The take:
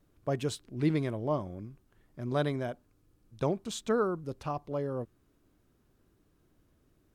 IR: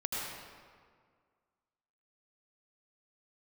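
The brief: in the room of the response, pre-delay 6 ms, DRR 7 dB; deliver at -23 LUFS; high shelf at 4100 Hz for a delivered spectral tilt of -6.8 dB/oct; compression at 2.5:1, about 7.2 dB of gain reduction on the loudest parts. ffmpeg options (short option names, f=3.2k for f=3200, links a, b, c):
-filter_complex "[0:a]highshelf=f=4.1k:g=-8,acompressor=threshold=-34dB:ratio=2.5,asplit=2[a][b];[1:a]atrim=start_sample=2205,adelay=6[c];[b][c]afir=irnorm=-1:irlink=0,volume=-12dB[d];[a][d]amix=inputs=2:normalize=0,volume=15.5dB"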